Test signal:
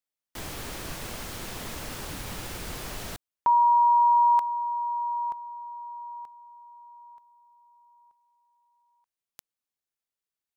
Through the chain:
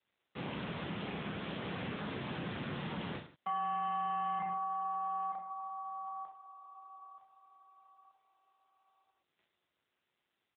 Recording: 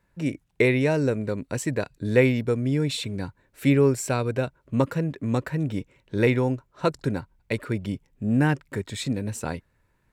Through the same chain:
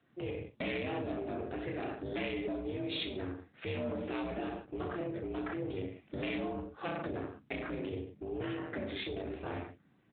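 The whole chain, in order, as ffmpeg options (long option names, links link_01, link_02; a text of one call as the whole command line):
ffmpeg -i in.wav -filter_complex "[0:a]aeval=exprs='0.531*(cos(1*acos(clip(val(0)/0.531,-1,1)))-cos(1*PI/2))+0.075*(cos(4*acos(clip(val(0)/0.531,-1,1)))-cos(4*PI/2))+0.0531*(cos(5*acos(clip(val(0)/0.531,-1,1)))-cos(5*PI/2))':channel_layout=same,aeval=exprs='val(0)*sin(2*PI*180*n/s)':channel_layout=same,aecho=1:1:30|63|99.3|139.2|183.2:0.631|0.398|0.251|0.158|0.1,acrossover=split=3100[link_01][link_02];[link_01]acompressor=threshold=-31dB:ratio=8:attack=2.1:release=21:knee=1:detection=peak[link_03];[link_03][link_02]amix=inputs=2:normalize=0,volume=-3dB" -ar 8000 -c:a libopencore_amrnb -b:a 10200 out.amr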